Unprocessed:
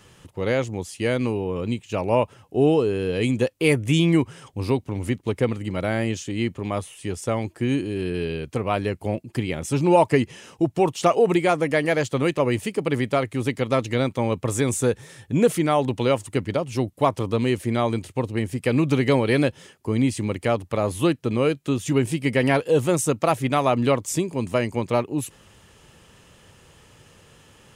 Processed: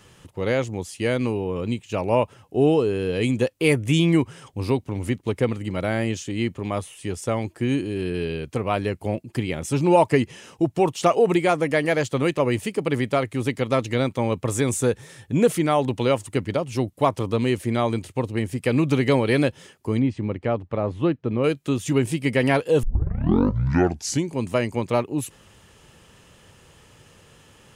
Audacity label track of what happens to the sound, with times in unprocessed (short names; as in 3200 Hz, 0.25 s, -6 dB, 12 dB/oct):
19.990000	21.440000	tape spacing loss at 10 kHz 31 dB
22.830000	22.830000	tape start 1.53 s